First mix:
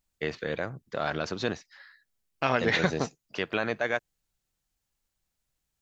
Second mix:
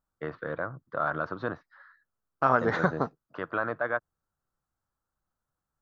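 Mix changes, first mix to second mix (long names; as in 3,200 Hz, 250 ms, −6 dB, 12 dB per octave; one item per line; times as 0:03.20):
first voice: add loudspeaker in its box 100–3,700 Hz, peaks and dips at 210 Hz −8 dB, 410 Hz −7 dB, 790 Hz −5 dB
master: add high shelf with overshoot 1,800 Hz −11 dB, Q 3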